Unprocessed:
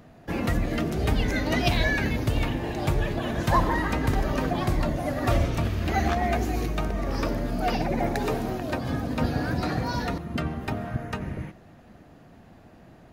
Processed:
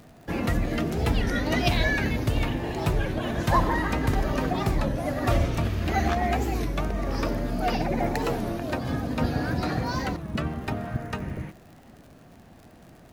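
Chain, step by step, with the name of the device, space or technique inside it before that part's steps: warped LP (record warp 33 1/3 rpm, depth 160 cents; crackle 77/s -42 dBFS; pink noise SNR 40 dB)

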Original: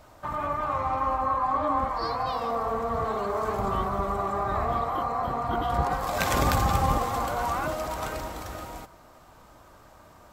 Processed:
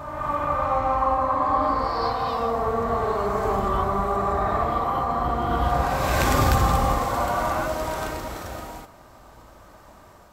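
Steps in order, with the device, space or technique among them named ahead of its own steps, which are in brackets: reverse reverb (reverse; reverb RT60 1.7 s, pre-delay 31 ms, DRR -1 dB; reverse)

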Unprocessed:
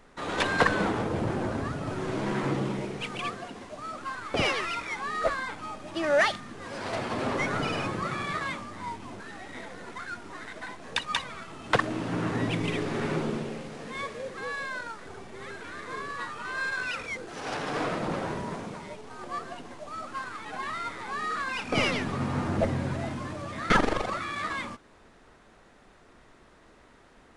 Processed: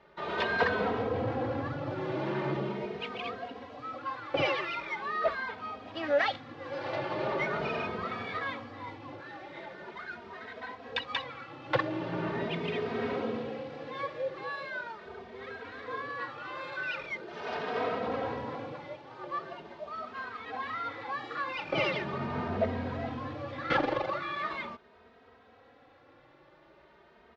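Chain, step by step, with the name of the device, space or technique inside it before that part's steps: barber-pole flanger into a guitar amplifier (endless flanger 2.9 ms +0.41 Hz; soft clip -20 dBFS, distortion -18 dB; speaker cabinet 80–4300 Hz, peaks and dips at 190 Hz -6 dB, 520 Hz +6 dB, 810 Hz +3 dB)

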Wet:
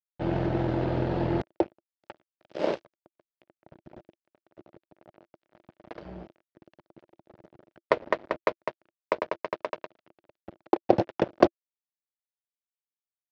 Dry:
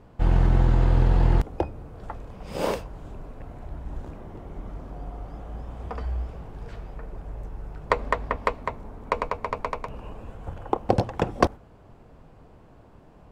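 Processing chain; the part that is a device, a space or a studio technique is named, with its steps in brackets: 4.99–5.64 low shelf 110 Hz -2 dB; blown loudspeaker (crossover distortion -30.5 dBFS; speaker cabinet 140–5100 Hz, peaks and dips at 340 Hz +9 dB, 610 Hz +8 dB, 1100 Hz -4 dB); gain -1.5 dB

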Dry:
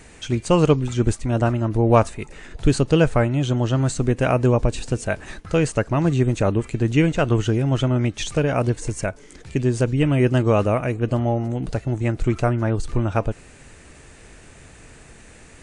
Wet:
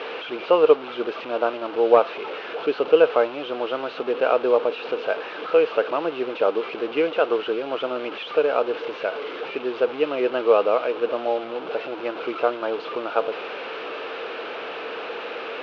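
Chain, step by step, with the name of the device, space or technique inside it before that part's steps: digital answering machine (BPF 370–3200 Hz; delta modulation 32 kbps, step -26 dBFS; speaker cabinet 370–3200 Hz, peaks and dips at 470 Hz +9 dB, 1300 Hz +4 dB, 1900 Hz -10 dB, 2800 Hz +3 dB)

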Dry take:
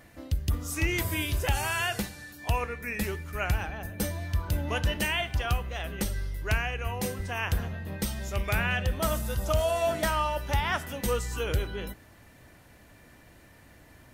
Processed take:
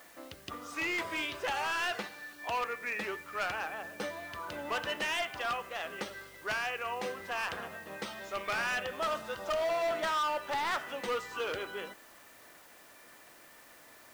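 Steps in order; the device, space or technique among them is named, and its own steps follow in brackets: drive-through speaker (BPF 430–3500 Hz; bell 1200 Hz +5 dB 0.36 oct; hard clip -28.5 dBFS, distortion -9 dB; white noise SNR 23 dB)

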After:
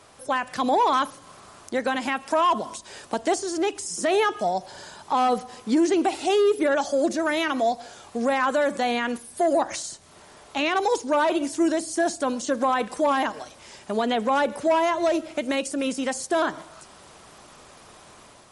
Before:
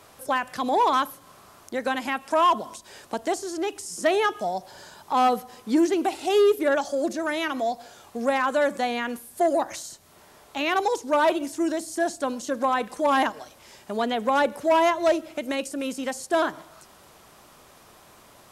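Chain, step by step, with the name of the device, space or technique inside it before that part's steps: low-bitrate web radio (AGC gain up to 4 dB; limiter -13 dBFS, peak gain reduction 7.5 dB; MP3 48 kbps 48000 Hz)

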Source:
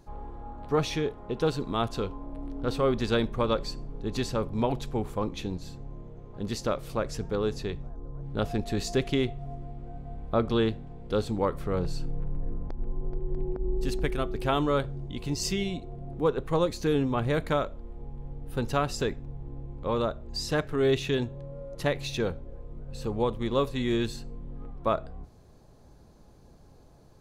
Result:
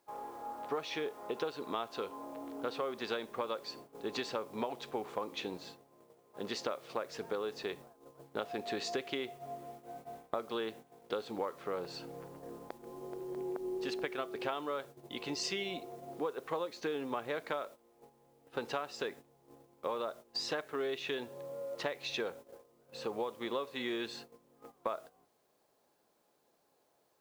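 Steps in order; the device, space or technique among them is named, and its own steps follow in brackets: baby monitor (BPF 460–4200 Hz; compressor 10:1, threshold -36 dBFS, peak gain reduction 15 dB; white noise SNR 26 dB; gate -52 dBFS, range -14 dB); gain +3 dB

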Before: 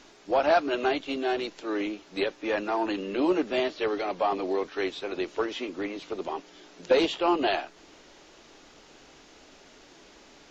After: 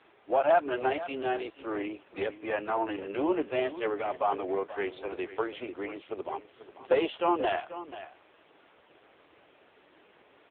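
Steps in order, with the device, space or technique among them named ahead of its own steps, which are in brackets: satellite phone (BPF 360–3000 Hz; echo 0.485 s -14 dB; AMR-NB 5.9 kbps 8000 Hz)

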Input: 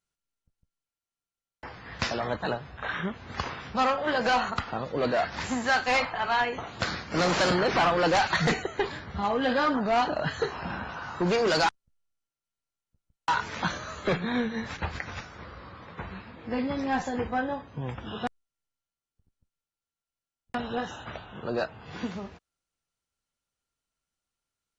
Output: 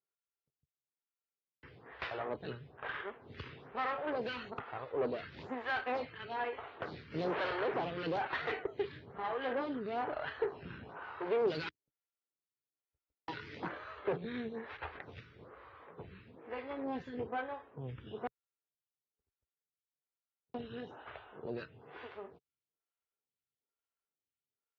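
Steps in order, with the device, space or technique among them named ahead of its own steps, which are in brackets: vibe pedal into a guitar amplifier (photocell phaser 1.1 Hz; tube stage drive 26 dB, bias 0.65; speaker cabinet 77–3500 Hz, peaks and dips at 130 Hz +3 dB, 200 Hz -7 dB, 420 Hz +8 dB); 11.67–13.74 thirty-one-band EQ 315 Hz +8 dB, 2000 Hz +5 dB, 5000 Hz +8 dB; gain -4.5 dB

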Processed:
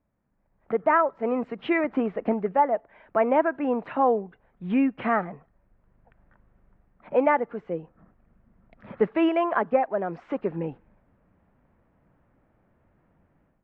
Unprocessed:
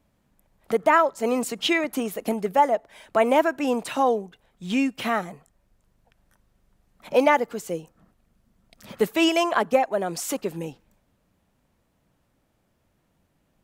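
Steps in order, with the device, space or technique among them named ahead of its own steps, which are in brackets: action camera in a waterproof case (LPF 2000 Hz 24 dB/oct; AGC gain up to 13 dB; gain -8.5 dB; AAC 64 kbps 22050 Hz)

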